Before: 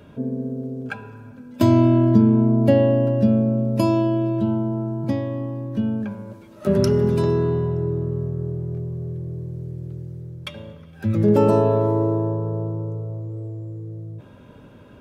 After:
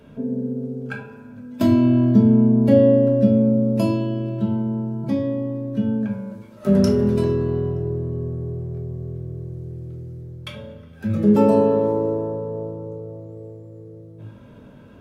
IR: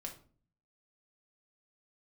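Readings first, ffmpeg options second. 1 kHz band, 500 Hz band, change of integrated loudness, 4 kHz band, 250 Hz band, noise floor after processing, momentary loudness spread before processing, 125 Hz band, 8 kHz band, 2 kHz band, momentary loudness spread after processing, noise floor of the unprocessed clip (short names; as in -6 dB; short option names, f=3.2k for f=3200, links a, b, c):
-2.5 dB, +0.5 dB, +1.0 dB, -1.5 dB, +2.0 dB, -44 dBFS, 18 LU, -2.0 dB, n/a, -1.0 dB, 20 LU, -45 dBFS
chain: -filter_complex "[1:a]atrim=start_sample=2205,asetrate=42336,aresample=44100[a];[0:a][a]afir=irnorm=-1:irlink=0,volume=2dB"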